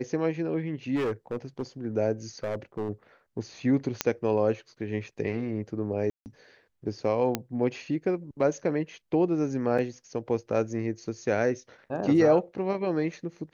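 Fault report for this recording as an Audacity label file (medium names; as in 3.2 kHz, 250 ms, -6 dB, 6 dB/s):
0.950000	1.620000	clipped -25 dBFS
2.430000	2.900000	clipped -26.5 dBFS
4.010000	4.010000	pop -7 dBFS
6.100000	6.260000	dropout 159 ms
7.350000	7.350000	pop -11 dBFS
9.780000	9.790000	dropout 5.8 ms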